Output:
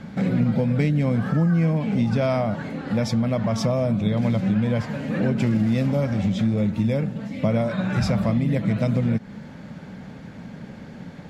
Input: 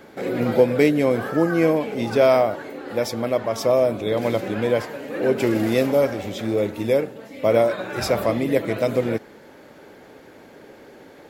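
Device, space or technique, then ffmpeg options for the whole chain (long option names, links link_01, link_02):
jukebox: -af "lowpass=7200,lowshelf=frequency=260:width_type=q:width=3:gain=11,acompressor=threshold=-21dB:ratio=4,volume=2dB"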